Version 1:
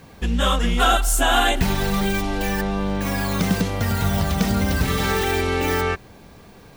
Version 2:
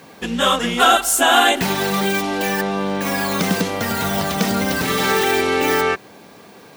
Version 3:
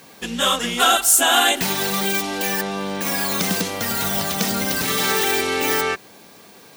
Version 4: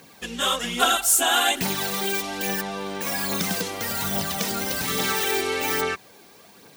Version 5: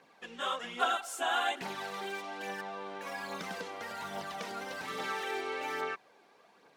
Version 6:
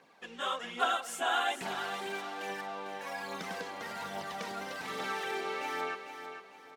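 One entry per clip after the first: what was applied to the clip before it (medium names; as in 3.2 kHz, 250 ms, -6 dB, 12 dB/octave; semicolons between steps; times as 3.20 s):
high-pass 230 Hz 12 dB/octave; trim +5 dB
treble shelf 3.2 kHz +10 dB; trim -5 dB
phaser 1.2 Hz, delay 2.9 ms, feedback 39%; trim -5 dB
band-pass filter 960 Hz, Q 0.66; trim -7.5 dB
feedback delay 450 ms, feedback 35%, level -9 dB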